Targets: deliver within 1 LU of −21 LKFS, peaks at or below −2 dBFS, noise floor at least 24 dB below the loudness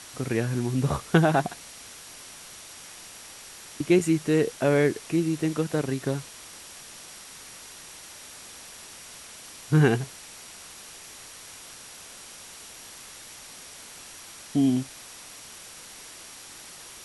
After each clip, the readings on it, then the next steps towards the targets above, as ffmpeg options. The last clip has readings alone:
interfering tone 5,700 Hz; level of the tone −54 dBFS; background noise floor −45 dBFS; target noise floor −49 dBFS; integrated loudness −25.0 LKFS; sample peak −4.5 dBFS; target loudness −21.0 LKFS
→ -af "bandreject=frequency=5700:width=30"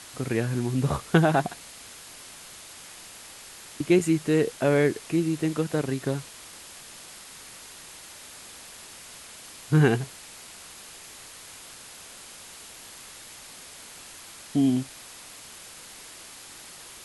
interfering tone none found; background noise floor −46 dBFS; target noise floor −49 dBFS
→ -af "afftdn=noise_reduction=6:noise_floor=-46"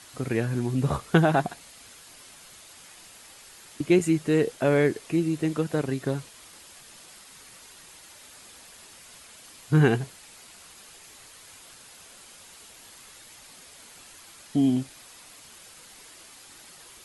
background noise floor −50 dBFS; integrated loudness −25.0 LKFS; sample peak −4.5 dBFS; target loudness −21.0 LKFS
→ -af "volume=4dB,alimiter=limit=-2dB:level=0:latency=1"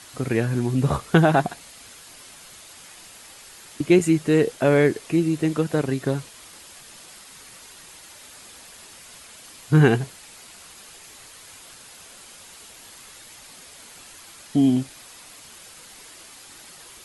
integrated loudness −21.0 LKFS; sample peak −2.0 dBFS; background noise floor −46 dBFS

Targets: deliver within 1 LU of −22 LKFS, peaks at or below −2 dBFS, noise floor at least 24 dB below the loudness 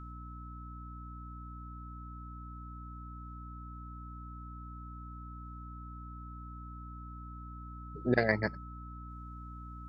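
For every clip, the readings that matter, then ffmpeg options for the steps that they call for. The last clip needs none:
mains hum 60 Hz; hum harmonics up to 300 Hz; level of the hum −44 dBFS; interfering tone 1,300 Hz; level of the tone −49 dBFS; integrated loudness −41.0 LKFS; sample peak −11.5 dBFS; target loudness −22.0 LKFS
→ -af "bandreject=frequency=60:width_type=h:width=6,bandreject=frequency=120:width_type=h:width=6,bandreject=frequency=180:width_type=h:width=6,bandreject=frequency=240:width_type=h:width=6,bandreject=frequency=300:width_type=h:width=6"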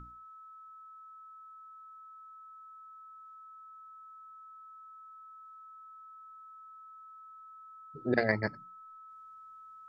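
mains hum none found; interfering tone 1,300 Hz; level of the tone −49 dBFS
→ -af "bandreject=frequency=1300:width=30"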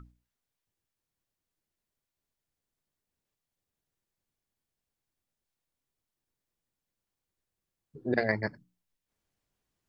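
interfering tone none found; integrated loudness −31.5 LKFS; sample peak −13.0 dBFS; target loudness −22.0 LKFS
→ -af "volume=9.5dB"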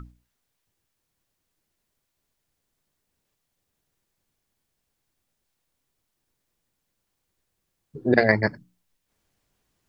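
integrated loudness −22.0 LKFS; sample peak −3.5 dBFS; background noise floor −79 dBFS

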